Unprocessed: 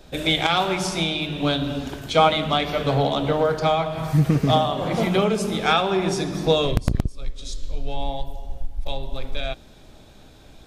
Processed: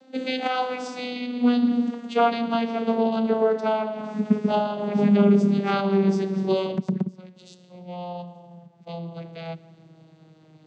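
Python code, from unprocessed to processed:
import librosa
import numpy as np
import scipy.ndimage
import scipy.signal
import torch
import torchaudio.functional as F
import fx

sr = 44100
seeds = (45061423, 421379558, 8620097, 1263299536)

p1 = fx.vocoder_glide(x, sr, note=60, semitones=-9)
y = p1 + fx.echo_wet_lowpass(p1, sr, ms=178, feedback_pct=34, hz=3000.0, wet_db=-22.0, dry=0)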